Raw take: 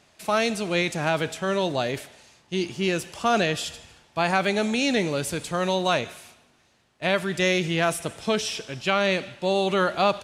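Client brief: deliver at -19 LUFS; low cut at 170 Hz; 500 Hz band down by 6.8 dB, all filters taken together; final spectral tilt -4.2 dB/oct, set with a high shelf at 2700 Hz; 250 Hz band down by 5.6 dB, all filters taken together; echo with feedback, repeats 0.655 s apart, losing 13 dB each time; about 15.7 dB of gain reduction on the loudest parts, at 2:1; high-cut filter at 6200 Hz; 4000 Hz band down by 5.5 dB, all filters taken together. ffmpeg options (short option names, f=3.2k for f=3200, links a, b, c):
-af "highpass=170,lowpass=6.2k,equalizer=f=250:t=o:g=-3.5,equalizer=f=500:t=o:g=-8,highshelf=f=2.7k:g=-3,equalizer=f=4k:t=o:g=-4,acompressor=threshold=-51dB:ratio=2,aecho=1:1:655|1310|1965:0.224|0.0493|0.0108,volume=24.5dB"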